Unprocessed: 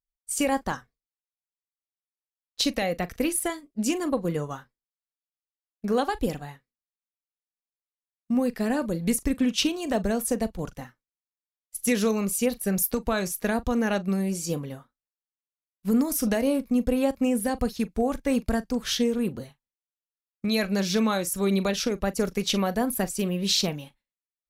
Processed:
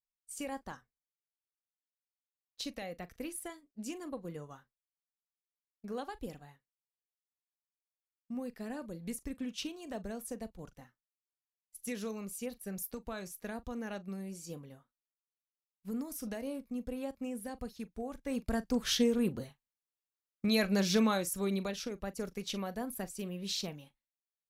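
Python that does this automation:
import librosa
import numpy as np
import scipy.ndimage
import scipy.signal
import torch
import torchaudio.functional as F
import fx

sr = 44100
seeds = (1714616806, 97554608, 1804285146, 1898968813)

y = fx.gain(x, sr, db=fx.line((18.14, -15.5), (18.73, -4.0), (21.0, -4.0), (21.82, -13.0)))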